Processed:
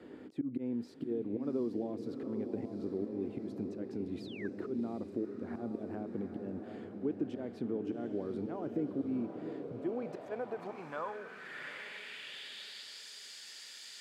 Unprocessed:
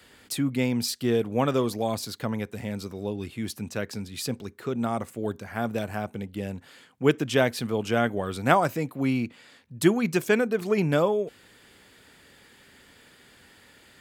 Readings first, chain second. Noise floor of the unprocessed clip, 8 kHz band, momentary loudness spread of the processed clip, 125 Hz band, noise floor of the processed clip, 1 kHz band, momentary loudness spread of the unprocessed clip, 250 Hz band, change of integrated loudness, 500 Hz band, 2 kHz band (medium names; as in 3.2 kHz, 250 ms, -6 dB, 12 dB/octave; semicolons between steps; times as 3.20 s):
-56 dBFS, under -15 dB, 9 LU, -16.5 dB, -50 dBFS, -17.5 dB, 11 LU, -9.0 dB, -12.5 dB, -12.5 dB, -16.0 dB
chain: slow attack 365 ms; in parallel at +1.5 dB: peak limiter -24.5 dBFS, peak gain reduction 11.5 dB; on the sum: compression 6:1, threshold -36 dBFS, peak gain reduction 18 dB; echo that smears into a reverb 760 ms, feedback 60%, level -6.5 dB; painted sound fall, 4.20–4.48 s, 1.5–5.3 kHz -33 dBFS; band-pass sweep 320 Hz -> 5.4 kHz, 9.39–13.08 s; trim +7.5 dB